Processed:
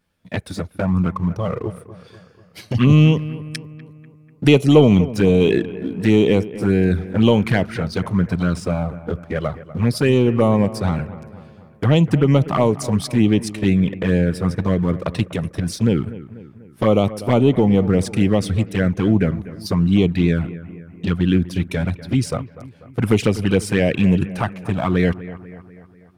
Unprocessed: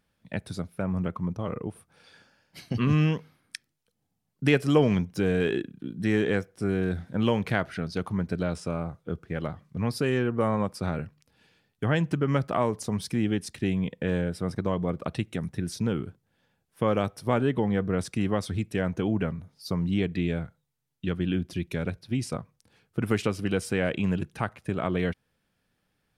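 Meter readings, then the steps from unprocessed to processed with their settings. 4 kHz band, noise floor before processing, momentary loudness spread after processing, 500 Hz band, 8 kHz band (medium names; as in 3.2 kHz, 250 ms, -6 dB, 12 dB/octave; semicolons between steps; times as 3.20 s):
+9.5 dB, -76 dBFS, 13 LU, +9.5 dB, +8.0 dB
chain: waveshaping leveller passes 1; touch-sensitive flanger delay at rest 11.9 ms, full sweep at -17.5 dBFS; bucket-brigade echo 245 ms, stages 4096, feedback 53%, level -16 dB; trim +8 dB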